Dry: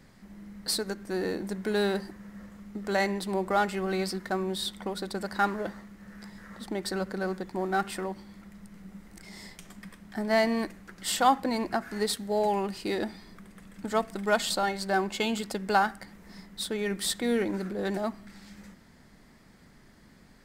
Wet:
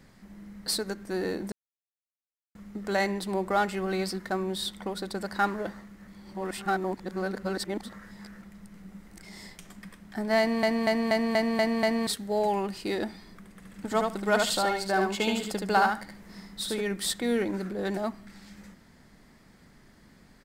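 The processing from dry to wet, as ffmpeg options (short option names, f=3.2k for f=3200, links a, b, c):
-filter_complex "[0:a]asplit=3[a][b][c];[a]afade=t=out:st=13.63:d=0.02[d];[b]aecho=1:1:74|148|222:0.668|0.1|0.015,afade=t=in:st=13.63:d=0.02,afade=t=out:st=16.8:d=0.02[e];[c]afade=t=in:st=16.8:d=0.02[f];[d][e][f]amix=inputs=3:normalize=0,asplit=12[g][h][i][j][k][l][m][n][o][p][q][r];[g]atrim=end=1.52,asetpts=PTS-STARTPTS,afade=t=out:st=1.516:d=0.004:c=hsin[s];[h]atrim=start=1.52:end=2.55,asetpts=PTS-STARTPTS,volume=0[t];[i]atrim=start=2.55:end=6.072,asetpts=PTS-STARTPTS,afade=t=in:d=0.004:c=hsin[u];[j]atrim=start=6.068:end=8.422,asetpts=PTS-STARTPTS,areverse[v];[k]atrim=start=8.418:end=10.632[w];[l]atrim=start=10.388:end=10.632[x];[m]atrim=start=10.388:end=10.632[y];[n]atrim=start=10.388:end=10.632[z];[o]atrim=start=10.388:end=10.632[aa];[p]atrim=start=10.388:end=10.632[ab];[q]atrim=start=10.388:end=10.632[ac];[r]atrim=start=12.068[ad];[s][t][u]concat=n=3:v=0:a=1[ae];[ae][v]acrossfade=d=0.004:c1=hsin:c2=hsin[af];[af][w]acrossfade=d=0.004:c1=hsin:c2=hsin[ag];[ag][x]acrossfade=d=0.004:c1=hsin:c2=hsin[ah];[ah][y]acrossfade=d=0.004:c1=hsin:c2=hsin[ai];[ai][z]acrossfade=d=0.004:c1=hsin:c2=hsin[aj];[aj][aa]acrossfade=d=0.004:c1=hsin:c2=hsin[ak];[ak][ab]acrossfade=d=0.004:c1=hsin:c2=hsin[al];[al][ac]acrossfade=d=0.004:c1=hsin:c2=hsin[am];[am][ad]acrossfade=d=0.004:c1=hsin:c2=hsin"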